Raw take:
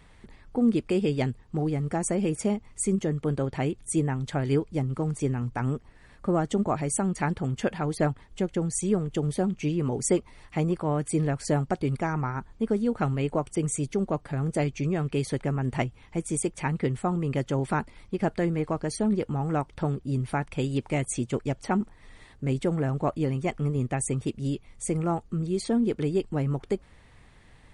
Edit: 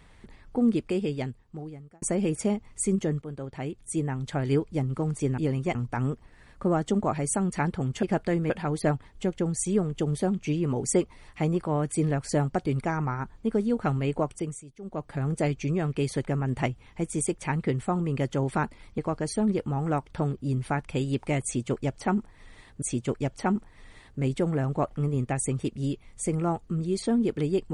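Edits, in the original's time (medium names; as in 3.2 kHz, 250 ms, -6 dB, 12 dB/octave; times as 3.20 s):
0.59–2.02 s: fade out
3.22–4.52 s: fade in, from -12 dB
13.41–14.34 s: dip -18.5 dB, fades 0.39 s
18.14–18.61 s: move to 7.66 s
21.07–22.45 s: loop, 2 plays
23.16–23.53 s: move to 5.38 s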